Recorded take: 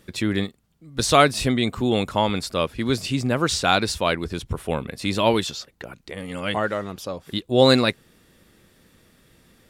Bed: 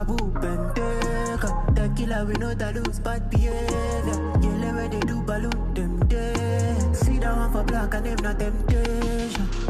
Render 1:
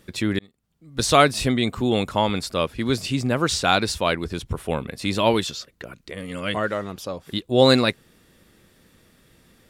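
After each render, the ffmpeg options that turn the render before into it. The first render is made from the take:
-filter_complex "[0:a]asettb=1/sr,asplit=3[s0][s1][s2];[s0]atrim=end=5.464[s3];[s1]atrim=start=5.46:end=6.71,asetpts=PTS-STARTPTS,afade=t=in:d=0.004:c=qsin,afade=t=out:st=1.246:d=0.004:c=qsin,equalizer=f=820:t=o:w=0.21:g=-11[s4];[s2]atrim=start=6.706[s5];[s3][s4]acrossfade=d=0.004:c1=hsin:c2=qsin[s6];[s6][s5]acrossfade=d=0.004:c1=qsin:c2=hsin,asplit=2[s7][s8];[s7]atrim=end=0.39,asetpts=PTS-STARTPTS,afade=t=out:st=0.386:d=0.004:c=hsin[s9];[s8]atrim=start=0.39,asetpts=PTS-STARTPTS,afade=t=in:d=0.61[s10];[s9][s10]concat=n=2:v=0:a=1"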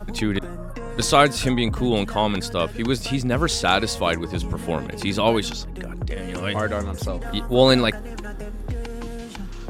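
-filter_complex "[1:a]volume=0.398[s0];[0:a][s0]amix=inputs=2:normalize=0"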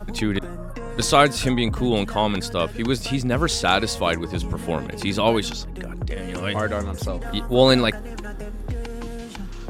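-af anull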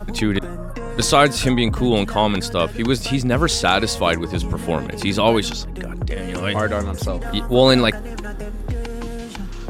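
-af "volume=1.5,alimiter=limit=0.794:level=0:latency=1"

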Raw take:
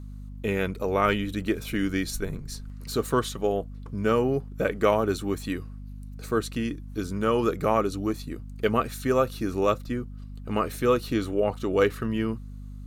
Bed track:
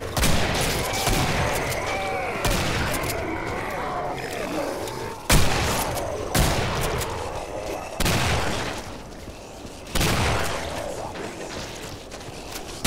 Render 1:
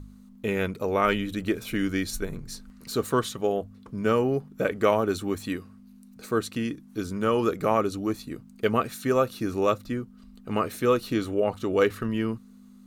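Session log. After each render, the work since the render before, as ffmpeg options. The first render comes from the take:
-af "bandreject=f=50:t=h:w=4,bandreject=f=100:t=h:w=4,bandreject=f=150:t=h:w=4"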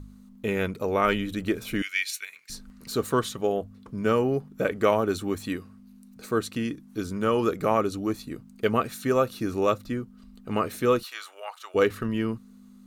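-filter_complex "[0:a]asettb=1/sr,asplit=3[s0][s1][s2];[s0]atrim=end=1.824[s3];[s1]atrim=start=1.82:end=2.5,asetpts=PTS-STARTPTS,afade=t=in:d=0.004:c=qsin,afade=t=out:st=0.676:d=0.004:c=qsin,highpass=f=2300:t=q:w=3.6[s4];[s2]atrim=start=2.496[s5];[s3][s4]acrossfade=d=0.004:c1=hsin:c2=qsin[s6];[s6][s5]acrossfade=d=0.004:c1=qsin:c2=hsin,asplit=3[s7][s8][s9];[s7]afade=t=out:st=11.02:d=0.02[s10];[s8]highpass=f=900:w=0.5412,highpass=f=900:w=1.3066,afade=t=in:st=11.02:d=0.02,afade=t=out:st=11.74:d=0.02[s11];[s9]afade=t=in:st=11.74:d=0.02[s12];[s10][s11][s12]amix=inputs=3:normalize=0"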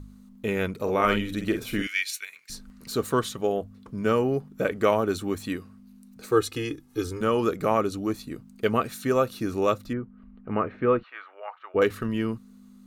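-filter_complex "[0:a]asettb=1/sr,asplit=3[s0][s1][s2];[s0]atrim=end=0.754[s3];[s1]atrim=start=0.75:end=2.01,asetpts=PTS-STARTPTS,afade=t=in:d=0.004:c=qsin,afade=t=out:st=1.256:d=0.004:c=qsin,asplit=2[s4][s5];[s5]adelay=48,volume=0.447[s6];[s4][s6]amix=inputs=2:normalize=0,atrim=end_sample=55566[s7];[s2]atrim=start=2.006[s8];[s3][s7]acrossfade=d=0.004:c1=hsin:c2=qsin[s9];[s9][s8]acrossfade=d=0.004:c1=qsin:c2=hsin,asettb=1/sr,asplit=3[s10][s11][s12];[s10]atrim=end=6.314[s13];[s11]atrim=start=6.31:end=7.21,asetpts=PTS-STARTPTS,afade=t=in:d=0.004:c=qsin,afade=t=out:st=0.896:d=0.004:c=qsin,aecho=1:1:2.4:0.98,atrim=end_sample=39690[s14];[s12]atrim=start=7.206[s15];[s13][s14]acrossfade=d=0.004:c1=hsin:c2=qsin[s16];[s16][s15]acrossfade=d=0.004:c1=qsin:c2=hsin,asettb=1/sr,asplit=3[s17][s18][s19];[s17]atrim=end=9.934[s20];[s18]atrim=start=9.93:end=11.82,asetpts=PTS-STARTPTS,afade=t=in:d=0.004:c=qsin,afade=t=out:st=1.886:d=0.004:c=qsin,lowpass=f=2200:w=0.5412,lowpass=f=2200:w=1.3066[s21];[s19]atrim=start=11.816[s22];[s20][s21]acrossfade=d=0.004:c1=hsin:c2=qsin[s23];[s23][s22]acrossfade=d=0.004:c1=qsin:c2=hsin"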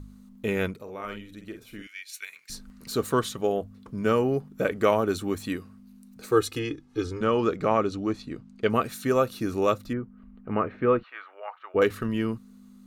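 -filter_complex "[0:a]asettb=1/sr,asplit=3[s0][s1][s2];[s0]atrim=end=6.594[s3];[s1]atrim=start=6.59:end=8.7,asetpts=PTS-STARTPTS,afade=t=in:d=0.004:c=qsin,afade=t=out:st=2.106:d=0.004:c=qsin,lowpass=5300[s4];[s2]atrim=start=8.696[s5];[s3][s4]acrossfade=d=0.004:c1=hsin:c2=qsin[s6];[s6][s5]acrossfade=d=0.004:c1=qsin:c2=hsin,asplit=3[s7][s8][s9];[s7]atrim=end=0.84,asetpts=PTS-STARTPTS,afade=t=out:st=0.66:d=0.18:silence=0.199526[s10];[s8]atrim=start=0.84:end=2.08,asetpts=PTS-STARTPTS,volume=0.2[s11];[s9]atrim=start=2.08,asetpts=PTS-STARTPTS,afade=t=in:d=0.18:silence=0.199526[s12];[s10][s11][s12]concat=n=3:v=0:a=1"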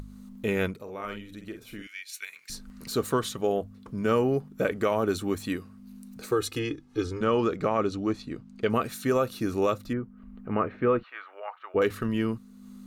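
-af "alimiter=limit=0.188:level=0:latency=1:release=45,acompressor=mode=upward:threshold=0.0126:ratio=2.5"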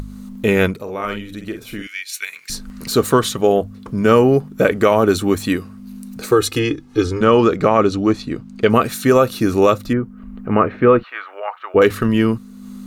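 -af "volume=3.98"

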